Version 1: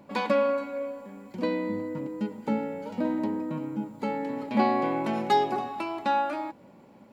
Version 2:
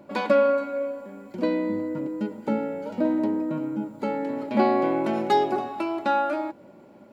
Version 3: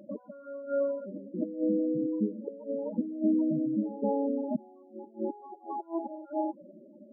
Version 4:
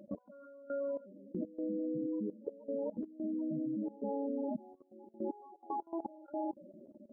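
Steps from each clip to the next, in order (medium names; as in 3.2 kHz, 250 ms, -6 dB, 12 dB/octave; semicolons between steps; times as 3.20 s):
small resonant body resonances 350/600/1400 Hz, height 8 dB, ringing for 30 ms
inverted gate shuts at -16 dBFS, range -31 dB; reverse echo 258 ms -11.5 dB; loudest bins only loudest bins 8
level held to a coarse grid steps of 18 dB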